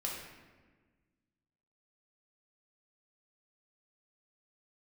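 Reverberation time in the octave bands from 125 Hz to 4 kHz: 2.0 s, 2.0 s, 1.5 s, 1.3 s, 1.3 s, 0.90 s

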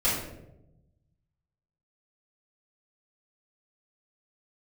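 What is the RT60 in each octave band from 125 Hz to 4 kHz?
1.8 s, 1.3 s, 1.1 s, 0.75 s, 0.60 s, 0.50 s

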